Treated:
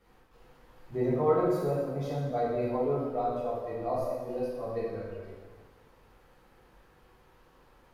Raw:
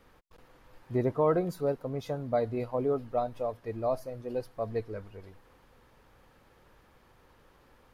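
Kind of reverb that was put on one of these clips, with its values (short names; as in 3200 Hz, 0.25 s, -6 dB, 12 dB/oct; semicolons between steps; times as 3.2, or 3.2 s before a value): plate-style reverb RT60 1.5 s, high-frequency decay 0.8×, DRR -9 dB; gain -9 dB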